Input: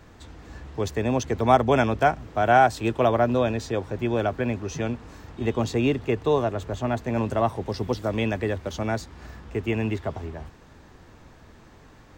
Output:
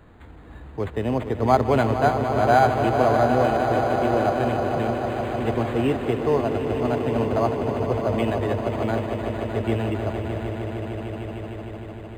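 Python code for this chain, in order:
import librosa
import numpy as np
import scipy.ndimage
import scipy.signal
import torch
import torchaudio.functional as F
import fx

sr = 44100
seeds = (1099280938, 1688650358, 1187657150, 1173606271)

y = fx.echo_swell(x, sr, ms=152, loudest=5, wet_db=-10.0)
y = fx.quant_dither(y, sr, seeds[0], bits=6, dither='none', at=(5.06, 6.16))
y = np.interp(np.arange(len(y)), np.arange(len(y))[::8], y[::8])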